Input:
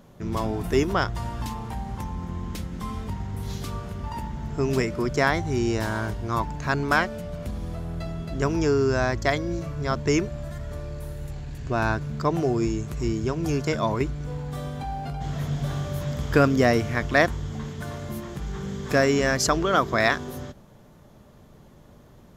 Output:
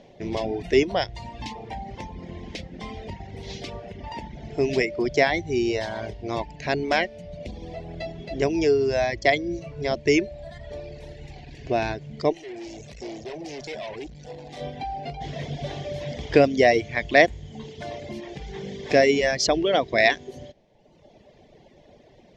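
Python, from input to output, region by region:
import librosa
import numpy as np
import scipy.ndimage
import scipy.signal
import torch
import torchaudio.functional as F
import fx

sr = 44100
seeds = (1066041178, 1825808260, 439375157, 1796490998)

y = fx.chain(x, sr, fx.bass_treble(bass_db=-3, treble_db=7),
    fx.tube_stage(drive_db=35.0, bias=0.6),
    fx.env_flatten(amount_pct=50), at=(12.32, 14.61))
y = fx.curve_eq(y, sr, hz=(110.0, 220.0, 340.0, 720.0, 1300.0, 2000.0, 5500.0, 15000.0), db=(0, 3, 9, 13, -8, 13, 8, -28))
y = fx.dereverb_blind(y, sr, rt60_s=1.1)
y = fx.dynamic_eq(y, sr, hz=910.0, q=1.1, threshold_db=-25.0, ratio=4.0, max_db=-4)
y = F.gain(torch.from_numpy(y), -5.0).numpy()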